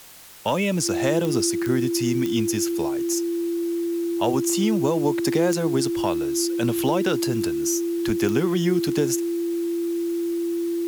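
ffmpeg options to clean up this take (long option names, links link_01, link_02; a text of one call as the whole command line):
ffmpeg -i in.wav -af "adeclick=threshold=4,bandreject=frequency=340:width=30,afwtdn=0.0056" out.wav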